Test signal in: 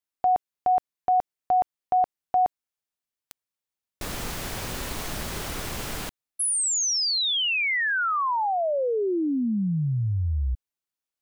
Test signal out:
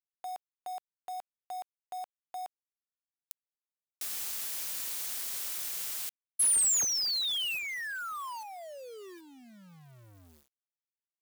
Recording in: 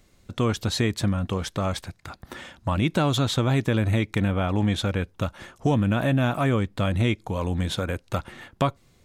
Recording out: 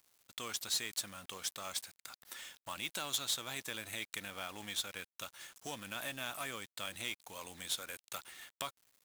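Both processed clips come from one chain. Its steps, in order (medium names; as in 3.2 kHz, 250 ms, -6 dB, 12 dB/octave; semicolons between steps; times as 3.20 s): differentiator; in parallel at -1.5 dB: compression 6:1, threshold -39 dBFS; on the sum: companded quantiser 4-bit; trim -4 dB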